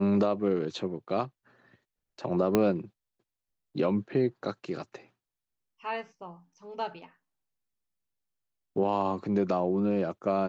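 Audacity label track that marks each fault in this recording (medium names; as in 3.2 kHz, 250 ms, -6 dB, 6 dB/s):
2.550000	2.550000	pop -10 dBFS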